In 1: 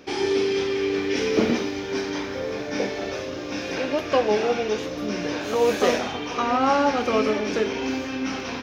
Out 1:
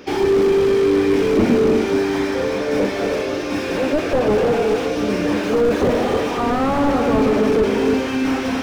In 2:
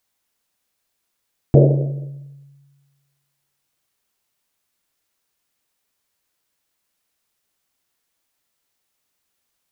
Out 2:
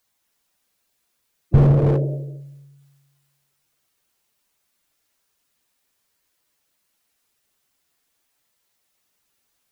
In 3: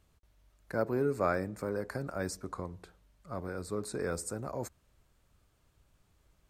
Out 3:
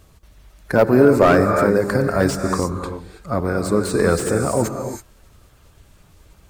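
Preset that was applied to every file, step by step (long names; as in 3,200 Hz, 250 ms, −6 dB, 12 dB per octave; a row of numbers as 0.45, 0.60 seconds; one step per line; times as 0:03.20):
spectral magnitudes quantised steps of 15 dB
reverb whose tail is shaped and stops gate 350 ms rising, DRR 6 dB
slew-rate limiting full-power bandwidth 39 Hz
loudness normalisation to −18 LKFS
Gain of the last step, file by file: +8.0, +2.5, +18.0 decibels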